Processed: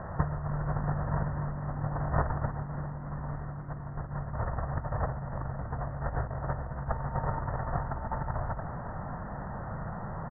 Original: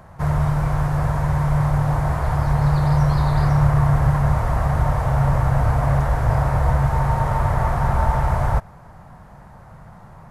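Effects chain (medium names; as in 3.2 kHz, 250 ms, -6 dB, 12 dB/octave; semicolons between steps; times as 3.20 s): compressor with a negative ratio -25 dBFS, ratio -0.5; rippled Chebyshev low-pass 1.9 kHz, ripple 3 dB; on a send: frequency-shifting echo 293 ms, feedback 59%, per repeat +47 Hz, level -15 dB; on the sum: trim -2.5 dB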